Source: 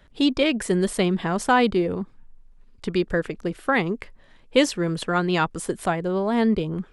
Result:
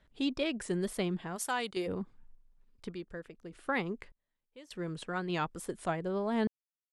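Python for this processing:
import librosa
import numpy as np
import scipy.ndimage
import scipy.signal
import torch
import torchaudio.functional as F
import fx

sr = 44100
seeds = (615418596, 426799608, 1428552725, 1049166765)

y = fx.riaa(x, sr, side='recording', at=(1.35, 1.86), fade=0.02)
y = fx.wow_flutter(y, sr, seeds[0], rate_hz=2.1, depth_cents=61.0)
y = fx.tremolo_random(y, sr, seeds[1], hz=1.7, depth_pct=100)
y = F.gain(torch.from_numpy(y), -8.5).numpy()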